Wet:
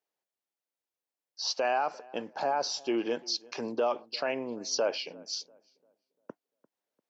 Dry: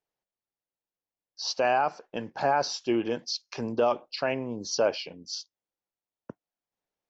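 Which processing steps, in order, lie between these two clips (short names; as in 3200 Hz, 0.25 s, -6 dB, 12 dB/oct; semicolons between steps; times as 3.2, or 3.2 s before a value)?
limiter -19 dBFS, peak gain reduction 4.5 dB; HPF 270 Hz 12 dB/oct; 2.02–2.77 dynamic EQ 1800 Hz, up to -5 dB, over -44 dBFS, Q 1.3; on a send: darkening echo 0.346 s, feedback 36%, low-pass 1600 Hz, level -22.5 dB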